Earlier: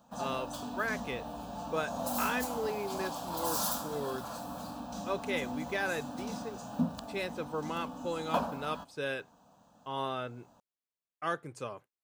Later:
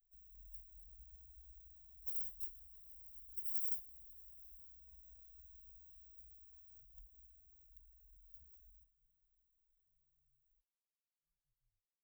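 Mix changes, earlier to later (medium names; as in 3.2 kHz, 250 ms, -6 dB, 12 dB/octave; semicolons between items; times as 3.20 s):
background +5.5 dB; master: add inverse Chebyshev band-stop 220–6600 Hz, stop band 80 dB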